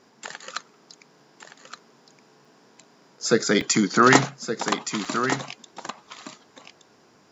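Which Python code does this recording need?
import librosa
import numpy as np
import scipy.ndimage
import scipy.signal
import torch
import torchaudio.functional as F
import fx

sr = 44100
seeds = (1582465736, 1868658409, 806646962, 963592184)

y = fx.fix_interpolate(x, sr, at_s=(2.45, 3.61, 5.05), length_ms=3.8)
y = fx.fix_echo_inverse(y, sr, delay_ms=1170, level_db=-9.0)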